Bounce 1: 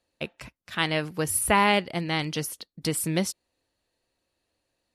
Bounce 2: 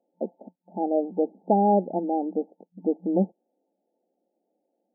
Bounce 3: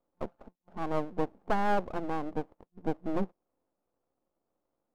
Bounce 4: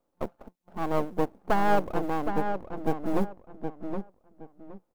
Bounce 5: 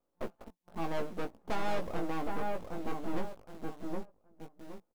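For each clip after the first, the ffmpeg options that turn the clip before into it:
ffmpeg -i in.wav -filter_complex "[0:a]afftfilt=real='re*between(b*sr/4096,180,890)':imag='im*between(b*sr/4096,180,890)':win_size=4096:overlap=0.75,asplit=2[link_01][link_02];[link_02]alimiter=limit=-20dB:level=0:latency=1:release=32,volume=0dB[link_03];[link_01][link_03]amix=inputs=2:normalize=0" out.wav
ffmpeg -i in.wav -af "aeval=exprs='max(val(0),0)':channel_layout=same,volume=-2.5dB" out.wav
ffmpeg -i in.wav -filter_complex "[0:a]acrusher=bits=8:mode=log:mix=0:aa=0.000001,asplit=2[link_01][link_02];[link_02]adelay=768,lowpass=frequency=2200:poles=1,volume=-6.5dB,asplit=2[link_03][link_04];[link_04]adelay=768,lowpass=frequency=2200:poles=1,volume=0.25,asplit=2[link_05][link_06];[link_06]adelay=768,lowpass=frequency=2200:poles=1,volume=0.25[link_07];[link_01][link_03][link_05][link_07]amix=inputs=4:normalize=0,volume=4dB" out.wav
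ffmpeg -i in.wav -filter_complex "[0:a]asplit=2[link_01][link_02];[link_02]acrusher=bits=6:mix=0:aa=0.000001,volume=-7dB[link_03];[link_01][link_03]amix=inputs=2:normalize=0,asoftclip=type=tanh:threshold=-20dB,asplit=2[link_04][link_05];[link_05]adelay=18,volume=-5dB[link_06];[link_04][link_06]amix=inputs=2:normalize=0,volume=-6.5dB" out.wav

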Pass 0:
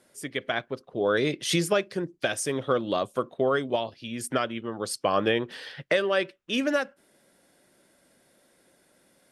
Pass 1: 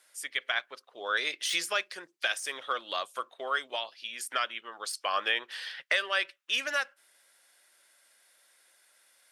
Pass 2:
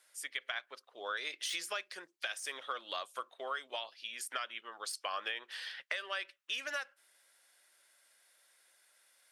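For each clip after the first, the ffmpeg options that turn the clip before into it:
ffmpeg -i in.wav -af "deesser=0.65,highpass=1300,volume=2.5dB" out.wav
ffmpeg -i in.wav -af "lowshelf=frequency=160:gain=-8.5,acompressor=threshold=-30dB:ratio=6,volume=-4dB" out.wav

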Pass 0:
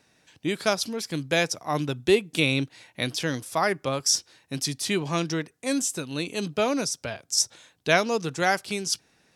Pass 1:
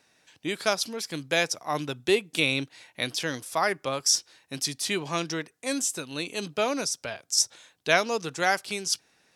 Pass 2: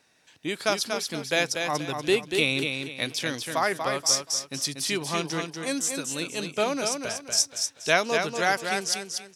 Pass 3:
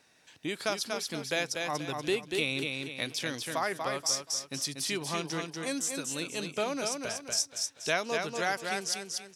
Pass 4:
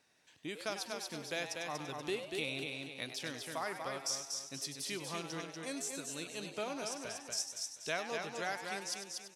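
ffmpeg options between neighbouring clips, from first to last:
ffmpeg -i in.wav -af "lowshelf=frequency=300:gain=-9" out.wav
ffmpeg -i in.wav -af "aecho=1:1:239|478|717|956:0.531|0.165|0.051|0.0158" out.wav
ffmpeg -i in.wav -af "acompressor=threshold=-38dB:ratio=1.5" out.wav
ffmpeg -i in.wav -filter_complex "[0:a]asplit=5[link_01][link_02][link_03][link_04][link_05];[link_02]adelay=99,afreqshift=140,volume=-10dB[link_06];[link_03]adelay=198,afreqshift=280,volume=-19.1dB[link_07];[link_04]adelay=297,afreqshift=420,volume=-28.2dB[link_08];[link_05]adelay=396,afreqshift=560,volume=-37.4dB[link_09];[link_01][link_06][link_07][link_08][link_09]amix=inputs=5:normalize=0,volume=-8dB" out.wav

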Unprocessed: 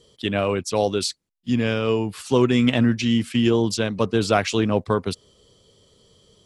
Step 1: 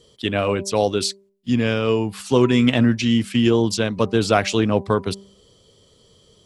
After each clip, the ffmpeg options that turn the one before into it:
ffmpeg -i in.wav -af "bandreject=frequency=196.8:width_type=h:width=4,bandreject=frequency=393.6:width_type=h:width=4,bandreject=frequency=590.4:width_type=h:width=4,bandreject=frequency=787.2:width_type=h:width=4,bandreject=frequency=984:width_type=h:width=4,volume=2dB" out.wav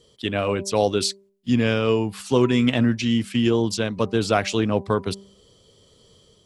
ffmpeg -i in.wav -af "dynaudnorm=framelen=440:gausssize=3:maxgain=3.5dB,volume=-3dB" out.wav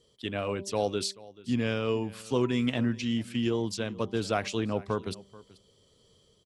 ffmpeg -i in.wav -af "aecho=1:1:434:0.0944,volume=-8.5dB" out.wav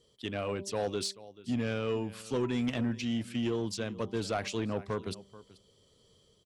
ffmpeg -i in.wav -af "asoftclip=type=tanh:threshold=-22dB,volume=-1.5dB" out.wav

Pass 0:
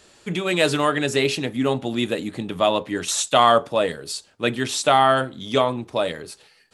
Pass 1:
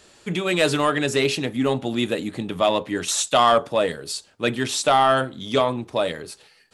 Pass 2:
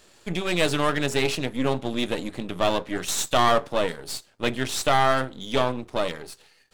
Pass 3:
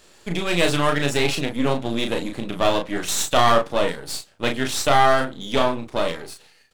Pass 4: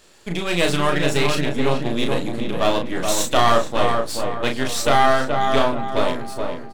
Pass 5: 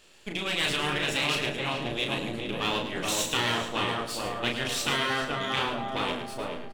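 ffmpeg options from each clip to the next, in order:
ffmpeg -i in.wav -af "acontrast=51,volume=-5.5dB" out.wav
ffmpeg -i in.wav -af "aeval=exprs='if(lt(val(0),0),0.251*val(0),val(0))':channel_layout=same" out.wav
ffmpeg -i in.wav -filter_complex "[0:a]asplit=2[link_01][link_02];[link_02]adelay=35,volume=-5dB[link_03];[link_01][link_03]amix=inputs=2:normalize=0,volume=2dB" out.wav
ffmpeg -i in.wav -filter_complex "[0:a]asplit=2[link_01][link_02];[link_02]adelay=426,lowpass=frequency=1700:poles=1,volume=-4dB,asplit=2[link_03][link_04];[link_04]adelay=426,lowpass=frequency=1700:poles=1,volume=0.45,asplit=2[link_05][link_06];[link_06]adelay=426,lowpass=frequency=1700:poles=1,volume=0.45,asplit=2[link_07][link_08];[link_08]adelay=426,lowpass=frequency=1700:poles=1,volume=0.45,asplit=2[link_09][link_10];[link_10]adelay=426,lowpass=frequency=1700:poles=1,volume=0.45,asplit=2[link_11][link_12];[link_12]adelay=426,lowpass=frequency=1700:poles=1,volume=0.45[link_13];[link_01][link_03][link_05][link_07][link_09][link_11][link_13]amix=inputs=7:normalize=0" out.wav
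ffmpeg -i in.wav -af "equalizer=frequency=2800:width_type=o:width=0.62:gain=8,afftfilt=real='re*lt(hypot(re,im),0.501)':imag='im*lt(hypot(re,im),0.501)':win_size=1024:overlap=0.75,aecho=1:1:108|216|324:0.355|0.0781|0.0172,volume=-7dB" out.wav

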